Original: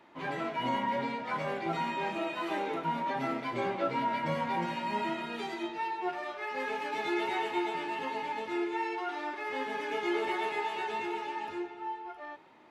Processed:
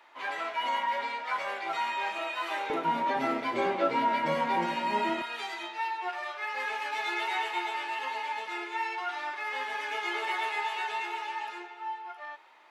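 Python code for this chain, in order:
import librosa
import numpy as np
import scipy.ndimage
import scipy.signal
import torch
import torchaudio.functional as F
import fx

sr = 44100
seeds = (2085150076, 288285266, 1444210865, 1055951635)

y = fx.highpass(x, sr, hz=fx.steps((0.0, 840.0), (2.7, 250.0), (5.22, 870.0)), slope=12)
y = y * 10.0 ** (4.5 / 20.0)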